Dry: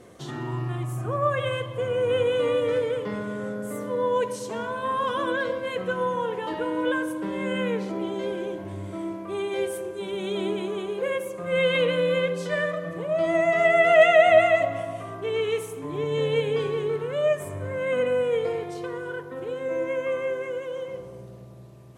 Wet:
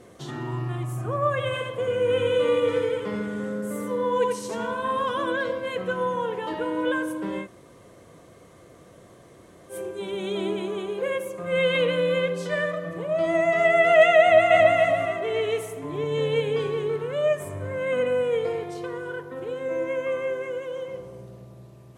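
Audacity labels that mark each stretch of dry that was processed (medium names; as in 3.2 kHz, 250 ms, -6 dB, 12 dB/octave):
1.450000	5.020000	delay 86 ms -4 dB
7.430000	9.730000	room tone, crossfade 0.10 s
14.220000	14.770000	echo throw 280 ms, feedback 40%, level -1 dB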